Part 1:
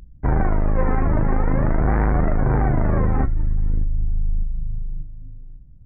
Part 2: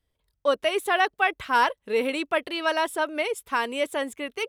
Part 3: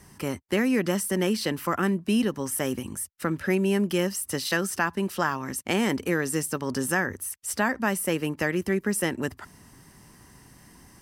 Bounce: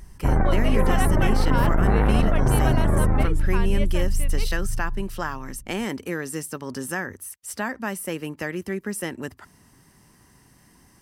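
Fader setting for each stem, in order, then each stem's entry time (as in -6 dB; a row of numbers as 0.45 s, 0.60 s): -1.0 dB, -7.5 dB, -3.5 dB; 0.00 s, 0.00 s, 0.00 s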